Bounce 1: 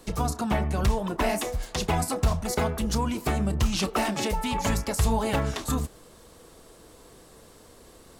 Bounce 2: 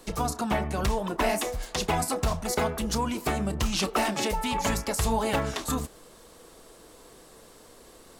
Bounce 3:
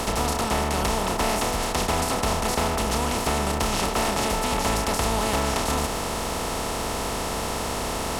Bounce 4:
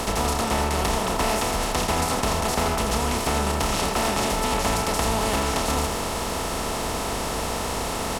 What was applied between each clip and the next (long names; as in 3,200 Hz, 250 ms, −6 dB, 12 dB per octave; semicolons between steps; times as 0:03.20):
parametric band 83 Hz −7 dB 2.4 octaves; level +1 dB
compressor on every frequency bin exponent 0.2; level −5.5 dB
single-tap delay 84 ms −8 dB